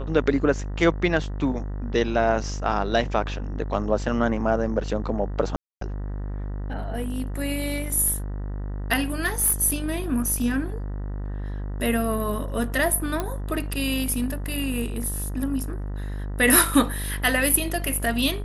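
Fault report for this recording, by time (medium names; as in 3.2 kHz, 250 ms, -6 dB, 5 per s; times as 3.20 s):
buzz 50 Hz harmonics 39 -30 dBFS
5.56–5.81 s: dropout 253 ms
9.25–9.54 s: clipped -16.5 dBFS
13.20 s: pop -12 dBFS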